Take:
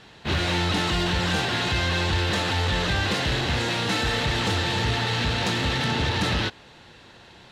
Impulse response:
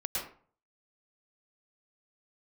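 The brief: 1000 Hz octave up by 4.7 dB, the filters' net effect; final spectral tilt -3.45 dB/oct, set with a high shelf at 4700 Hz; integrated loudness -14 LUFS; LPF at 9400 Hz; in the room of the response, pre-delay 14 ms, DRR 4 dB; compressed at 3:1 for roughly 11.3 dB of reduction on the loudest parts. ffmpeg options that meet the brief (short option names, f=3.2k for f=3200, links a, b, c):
-filter_complex "[0:a]lowpass=9.4k,equalizer=f=1k:t=o:g=5.5,highshelf=f=4.7k:g=9,acompressor=threshold=-35dB:ratio=3,asplit=2[a][b];[1:a]atrim=start_sample=2205,adelay=14[c];[b][c]afir=irnorm=-1:irlink=0,volume=-8.5dB[d];[a][d]amix=inputs=2:normalize=0,volume=17dB"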